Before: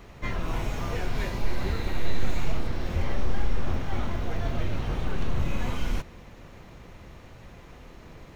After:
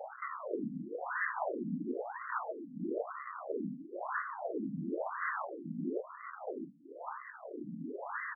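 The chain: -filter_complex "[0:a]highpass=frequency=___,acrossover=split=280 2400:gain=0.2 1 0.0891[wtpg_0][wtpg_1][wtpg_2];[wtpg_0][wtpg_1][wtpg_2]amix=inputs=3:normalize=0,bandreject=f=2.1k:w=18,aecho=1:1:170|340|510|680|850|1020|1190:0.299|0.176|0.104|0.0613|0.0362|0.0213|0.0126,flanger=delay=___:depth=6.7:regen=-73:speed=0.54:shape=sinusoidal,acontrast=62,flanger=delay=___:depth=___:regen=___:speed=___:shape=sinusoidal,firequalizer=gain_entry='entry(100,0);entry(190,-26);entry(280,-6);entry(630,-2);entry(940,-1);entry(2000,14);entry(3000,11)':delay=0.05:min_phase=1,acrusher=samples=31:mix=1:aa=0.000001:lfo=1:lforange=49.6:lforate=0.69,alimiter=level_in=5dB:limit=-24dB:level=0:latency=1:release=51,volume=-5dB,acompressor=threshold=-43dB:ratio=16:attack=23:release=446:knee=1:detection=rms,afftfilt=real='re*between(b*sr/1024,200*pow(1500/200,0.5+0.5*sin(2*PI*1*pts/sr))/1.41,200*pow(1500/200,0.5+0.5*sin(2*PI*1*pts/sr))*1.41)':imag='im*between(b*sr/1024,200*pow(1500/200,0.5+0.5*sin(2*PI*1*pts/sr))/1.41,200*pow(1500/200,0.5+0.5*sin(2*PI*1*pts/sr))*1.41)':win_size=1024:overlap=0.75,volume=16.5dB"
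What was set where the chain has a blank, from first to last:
120, 0.8, 8.3, 5.8, -77, 1.2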